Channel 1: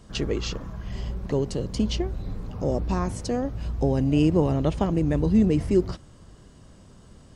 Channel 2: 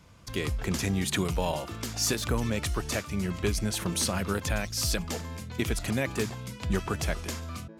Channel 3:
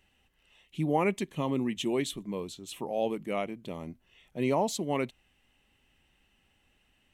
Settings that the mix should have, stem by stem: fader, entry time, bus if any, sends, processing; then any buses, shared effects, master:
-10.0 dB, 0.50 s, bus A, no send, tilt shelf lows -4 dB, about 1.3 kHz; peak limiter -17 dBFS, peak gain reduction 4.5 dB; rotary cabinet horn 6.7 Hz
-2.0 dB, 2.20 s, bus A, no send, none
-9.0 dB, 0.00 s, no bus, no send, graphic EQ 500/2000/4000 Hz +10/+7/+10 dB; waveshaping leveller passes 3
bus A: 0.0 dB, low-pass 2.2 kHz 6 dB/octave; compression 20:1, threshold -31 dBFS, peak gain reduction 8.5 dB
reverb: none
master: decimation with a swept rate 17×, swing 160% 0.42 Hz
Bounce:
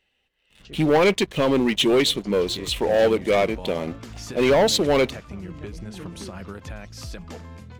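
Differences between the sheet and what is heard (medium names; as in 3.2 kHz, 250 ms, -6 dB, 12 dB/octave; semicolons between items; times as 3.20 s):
stem 3 -9.0 dB -> -3.0 dB; master: missing decimation with a swept rate 17×, swing 160% 0.42 Hz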